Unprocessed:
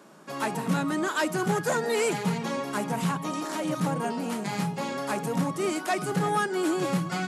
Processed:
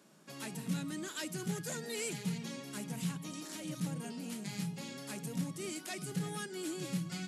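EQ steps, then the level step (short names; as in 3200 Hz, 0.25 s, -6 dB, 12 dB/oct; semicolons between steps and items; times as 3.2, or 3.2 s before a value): dynamic EQ 870 Hz, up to -7 dB, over -40 dBFS, Q 0.73; bell 380 Hz -5.5 dB 2 oct; bell 1100 Hz -9 dB 1.7 oct; -5.0 dB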